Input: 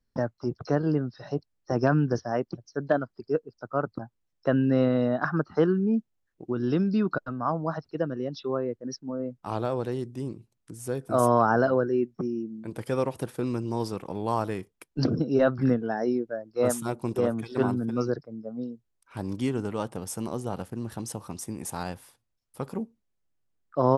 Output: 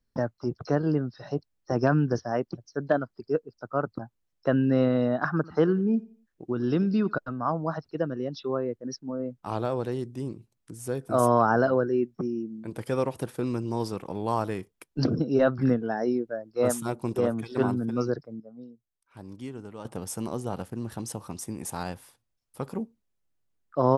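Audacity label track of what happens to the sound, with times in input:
5.350000	7.130000	feedback echo 87 ms, feedback 34%, level -21 dB
18.400000	19.850000	gain -10.5 dB

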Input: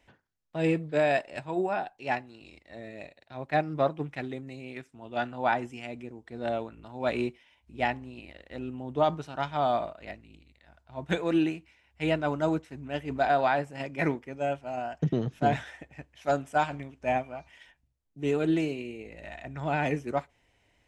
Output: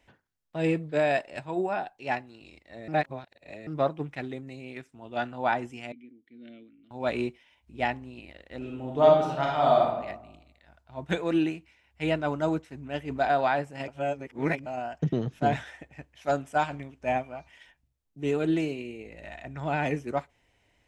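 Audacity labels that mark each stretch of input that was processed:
2.880000	3.670000	reverse
5.920000	6.910000	vowel filter i
8.570000	9.880000	reverb throw, RT60 0.86 s, DRR -2.5 dB
13.880000	14.660000	reverse

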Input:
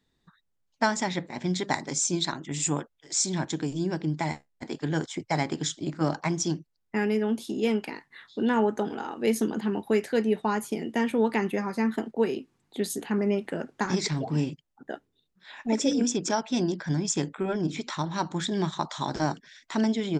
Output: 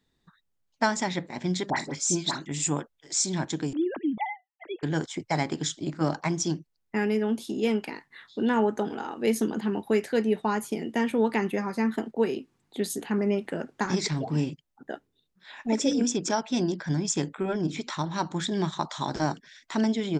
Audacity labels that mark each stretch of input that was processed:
1.700000	2.460000	dispersion highs, late by 64 ms, half as late at 1600 Hz
3.730000	4.830000	sine-wave speech

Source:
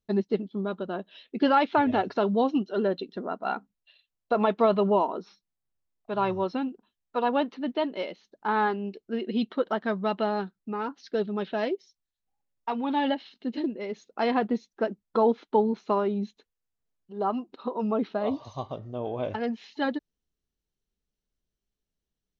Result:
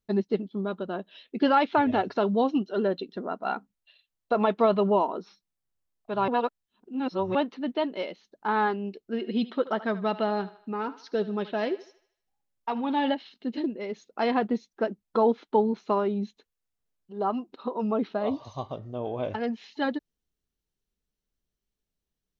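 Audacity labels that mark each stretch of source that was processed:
6.280000	7.350000	reverse
9.100000	13.140000	thinning echo 77 ms, feedback 48%, level -15.5 dB

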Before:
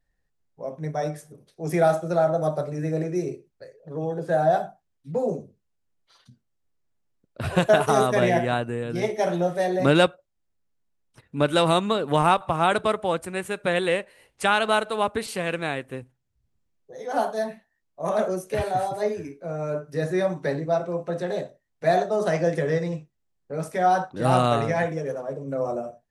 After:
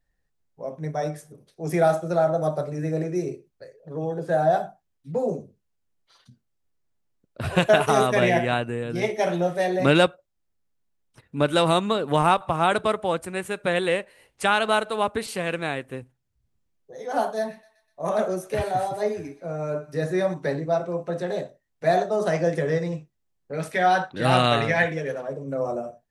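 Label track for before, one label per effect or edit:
7.470000	9.980000	dynamic EQ 2500 Hz, up to +6 dB, over -42 dBFS, Q 1.6
17.380000	20.340000	thinning echo 0.124 s, feedback 57%, high-pass 1000 Hz, level -17 dB
23.530000	25.280000	band shelf 2600 Hz +9 dB

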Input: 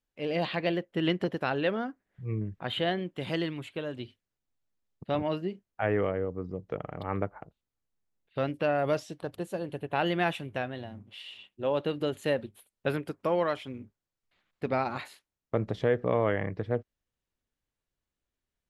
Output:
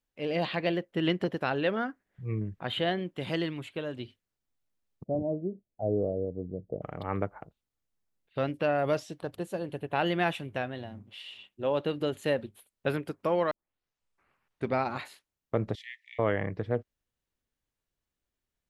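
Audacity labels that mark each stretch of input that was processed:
1.760000	2.400000	dynamic EQ 1700 Hz, up to +7 dB, over -52 dBFS, Q 1.1
5.040000	6.820000	elliptic low-pass 660 Hz, stop band 70 dB
13.510000	13.510000	tape start 1.24 s
15.750000	16.190000	Chebyshev high-pass 1800 Hz, order 10

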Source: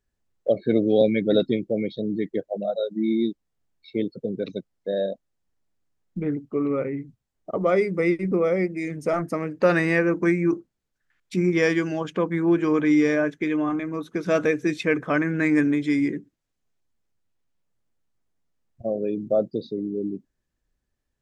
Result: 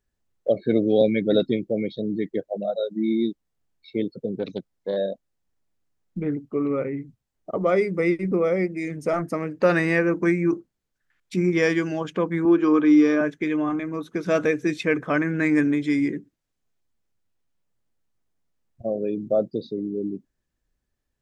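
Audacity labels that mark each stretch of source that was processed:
4.380000	4.970000	Doppler distortion depth 0.13 ms
12.450000	13.210000	speaker cabinet 220–6000 Hz, peaks and dips at 310 Hz +5 dB, 640 Hz -3 dB, 1200 Hz +6 dB, 2000 Hz -6 dB

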